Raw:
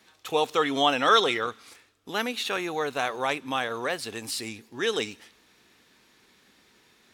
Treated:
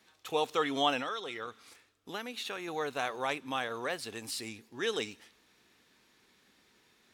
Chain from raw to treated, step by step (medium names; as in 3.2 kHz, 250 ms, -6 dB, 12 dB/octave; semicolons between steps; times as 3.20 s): 0.99–2.68 s: compression 6:1, threshold -29 dBFS, peak gain reduction 14 dB; trim -6 dB